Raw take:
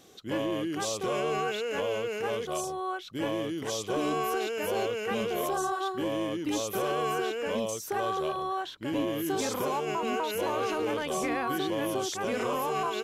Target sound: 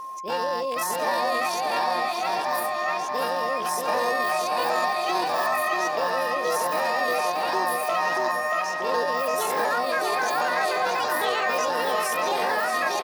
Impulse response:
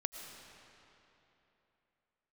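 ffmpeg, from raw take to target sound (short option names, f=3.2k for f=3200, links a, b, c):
-filter_complex "[0:a]highpass=f=140:p=1,asplit=2[a][b];[b]aecho=0:1:828:0.0944[c];[a][c]amix=inputs=2:normalize=0,aeval=exprs='val(0)+0.0141*sin(2*PI*650*n/s)':c=same,asetrate=72056,aresample=44100,atempo=0.612027,asplit=2[d][e];[e]adelay=634,lowpass=f=4.8k:p=1,volume=-3dB,asplit=2[f][g];[g]adelay=634,lowpass=f=4.8k:p=1,volume=0.49,asplit=2[h][i];[i]adelay=634,lowpass=f=4.8k:p=1,volume=0.49,asplit=2[j][k];[k]adelay=634,lowpass=f=4.8k:p=1,volume=0.49,asplit=2[l][m];[m]adelay=634,lowpass=f=4.8k:p=1,volume=0.49,asplit=2[n][o];[o]adelay=634,lowpass=f=4.8k:p=1,volume=0.49[p];[f][h][j][l][n][p]amix=inputs=6:normalize=0[q];[d][q]amix=inputs=2:normalize=0,volume=4dB"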